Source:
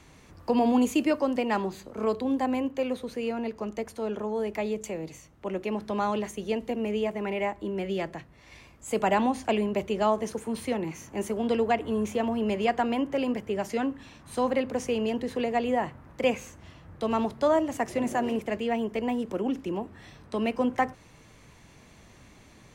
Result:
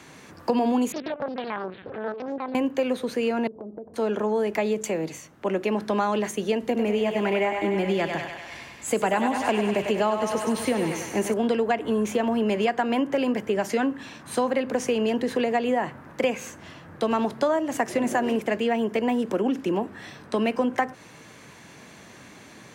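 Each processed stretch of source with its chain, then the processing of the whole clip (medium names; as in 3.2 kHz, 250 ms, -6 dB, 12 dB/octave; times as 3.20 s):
0.92–2.55 s: LPC vocoder at 8 kHz pitch kept + compression 3:1, threshold -35 dBFS + loudspeaker Doppler distortion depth 0.91 ms
3.47–3.94 s: inverse Chebyshev low-pass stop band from 4.1 kHz, stop band 80 dB + compression 10:1, threshold -41 dBFS
6.63–11.34 s: bass shelf 70 Hz +11.5 dB + thinning echo 98 ms, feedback 74%, high-pass 480 Hz, level -6 dB
whole clip: high-pass 160 Hz 12 dB/octave; peaking EQ 1.6 kHz +5 dB 0.28 oct; compression, threshold -28 dBFS; trim +8 dB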